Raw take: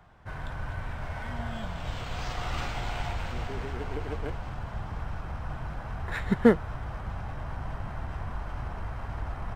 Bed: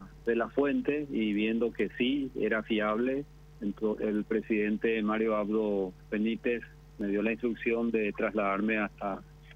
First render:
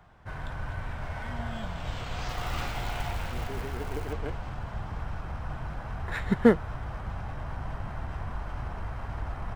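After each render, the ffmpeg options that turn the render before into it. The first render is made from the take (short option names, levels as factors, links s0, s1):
-filter_complex "[0:a]asettb=1/sr,asplit=3[s0][s1][s2];[s0]atrim=end=2.294[s3];[s1]atrim=start=2.29:end=4.13,asetpts=PTS-STARTPTS,afade=t=in:d=0.004:c=qsin,afade=t=out:st=1.836:d=0.004:c=qsin,acrusher=bits=5:mode=log:mix=0:aa=0.000001[s4];[s2]atrim=start=4.126[s5];[s3][s4]acrossfade=d=0.004:c1=hsin:c2=qsin[s6];[s6][s5]acrossfade=d=0.004:c1=qsin:c2=hsin"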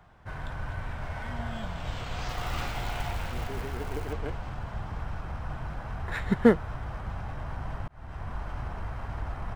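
-filter_complex "[0:a]asplit=2[s0][s1];[s0]atrim=end=7.88,asetpts=PTS-STARTPTS,afade=t=out:st=7.876:d=0.004:c=hsin[s2];[s1]atrim=start=7.88,asetpts=PTS-STARTPTS,afade=t=in:d=0.59:c=qsin[s3];[s2][s3]concat=n=2:v=0:a=1"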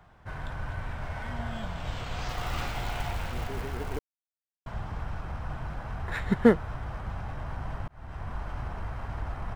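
-filter_complex "[0:a]asplit=3[s0][s1][s2];[s0]atrim=end=3.99,asetpts=PTS-STARTPTS,afade=t=out:st=3.986:d=0.004:c=hsin[s3];[s1]atrim=start=3.99:end=4.66,asetpts=PTS-STARTPTS,volume=0[s4];[s2]atrim=start=4.66,asetpts=PTS-STARTPTS,afade=t=in:d=0.004:c=hsin[s5];[s3][s4][s5]concat=n=3:v=0:a=1"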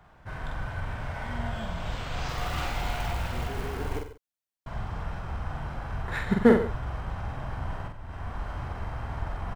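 -filter_complex "[0:a]asplit=2[s0][s1];[s1]adelay=46,volume=0.668[s2];[s0][s2]amix=inputs=2:normalize=0,aecho=1:1:93|141:0.251|0.126"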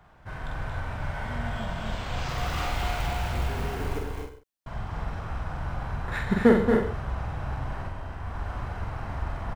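-af "aecho=1:1:227.4|259.5:0.501|0.447"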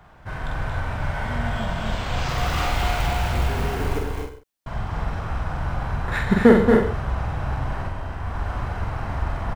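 -af "volume=2,alimiter=limit=0.891:level=0:latency=1"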